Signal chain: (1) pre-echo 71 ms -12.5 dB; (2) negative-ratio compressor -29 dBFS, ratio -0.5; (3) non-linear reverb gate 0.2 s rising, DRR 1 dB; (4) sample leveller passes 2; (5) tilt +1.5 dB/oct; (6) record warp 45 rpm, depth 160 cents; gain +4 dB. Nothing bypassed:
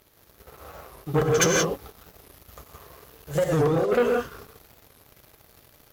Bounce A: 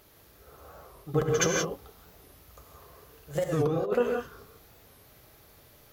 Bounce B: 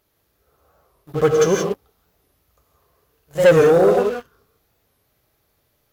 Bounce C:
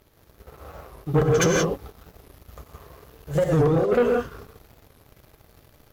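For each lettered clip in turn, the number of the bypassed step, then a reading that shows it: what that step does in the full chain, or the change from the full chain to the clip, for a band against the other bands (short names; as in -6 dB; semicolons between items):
4, loudness change -5.0 LU; 2, momentary loudness spread change +4 LU; 5, 8 kHz band -5.0 dB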